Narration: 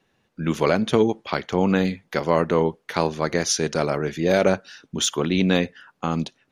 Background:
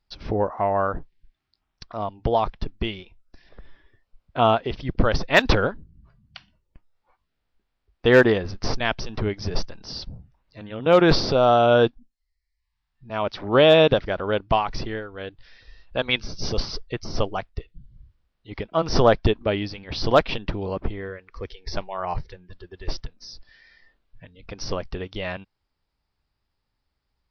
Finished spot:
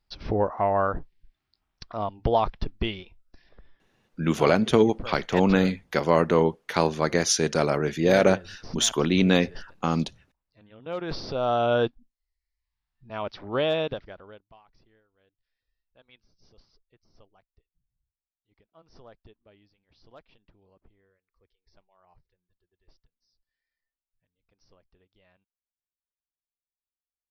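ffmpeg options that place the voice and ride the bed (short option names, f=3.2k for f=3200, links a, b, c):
-filter_complex "[0:a]adelay=3800,volume=-0.5dB[a];[1:a]volume=10dB,afade=t=out:st=3.07:d=0.82:silence=0.158489,afade=t=in:st=11.06:d=0.57:silence=0.281838,afade=t=out:st=13.11:d=1.34:silence=0.0398107[b];[a][b]amix=inputs=2:normalize=0"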